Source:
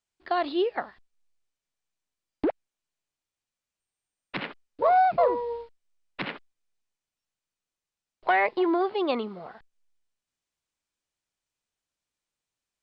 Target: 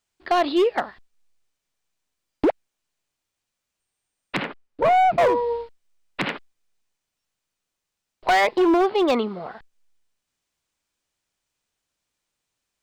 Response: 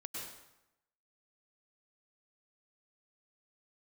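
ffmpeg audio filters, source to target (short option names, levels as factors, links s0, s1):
-filter_complex "[0:a]asoftclip=type=hard:threshold=0.0841,asettb=1/sr,asplit=3[s0][s1][s2];[s0]atrim=end=4.424[s3];[s1]atrim=start=4.42:end=5.18,asetpts=PTS-STARTPTS,afade=t=in:d=0.004:c=qsin,afade=t=out:st=0.756:d=0.004:c=qsin,highshelf=f=2900:g=-10.5[s4];[s2]atrim=start=5.176[s5];[s3][s4]acrossfade=d=0.004:c1=hsin:c2=qsin[s6];[s6][s5]acrossfade=d=0.004:c1=qsin:c2=hsin,volume=2.37"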